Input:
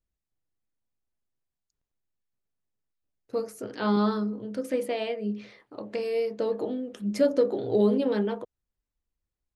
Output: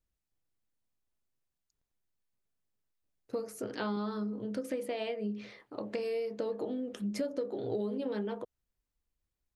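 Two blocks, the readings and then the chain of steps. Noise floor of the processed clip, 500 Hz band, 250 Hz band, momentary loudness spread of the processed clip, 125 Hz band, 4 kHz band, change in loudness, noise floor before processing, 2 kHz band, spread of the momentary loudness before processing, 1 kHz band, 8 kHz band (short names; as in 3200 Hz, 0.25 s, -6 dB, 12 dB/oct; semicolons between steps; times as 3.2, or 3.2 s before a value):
under -85 dBFS, -8.5 dB, -8.0 dB, 6 LU, -8.0 dB, -6.0 dB, -8.5 dB, under -85 dBFS, -6.0 dB, 13 LU, -8.5 dB, -3.0 dB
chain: compressor 6:1, threshold -32 dBFS, peak gain reduction 14 dB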